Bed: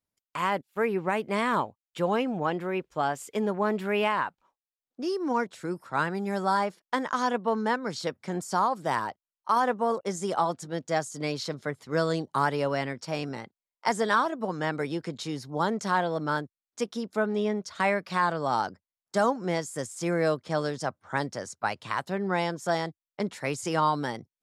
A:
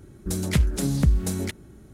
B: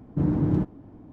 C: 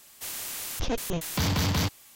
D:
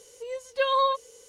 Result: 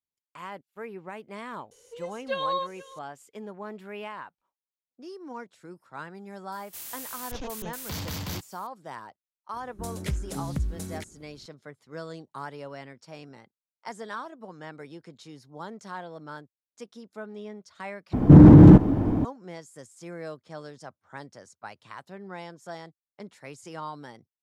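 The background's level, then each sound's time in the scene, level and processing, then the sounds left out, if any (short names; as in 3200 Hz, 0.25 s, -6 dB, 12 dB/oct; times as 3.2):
bed -12.5 dB
1.71 add D -5.5 dB + echo 0.483 s -18.5 dB
6.52 add C -9 dB + high shelf 9400 Hz +9 dB
9.53 add A -9.5 dB
18.13 replace with B -1.5 dB + maximiser +24 dB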